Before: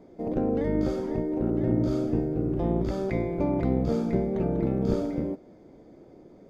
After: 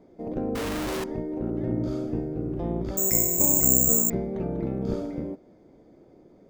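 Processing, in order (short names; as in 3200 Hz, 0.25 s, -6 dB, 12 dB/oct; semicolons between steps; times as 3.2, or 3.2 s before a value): 0.55–1.04 infinite clipping; 2.97–4.1 careless resampling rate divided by 6×, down filtered, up zero stuff; gain -3 dB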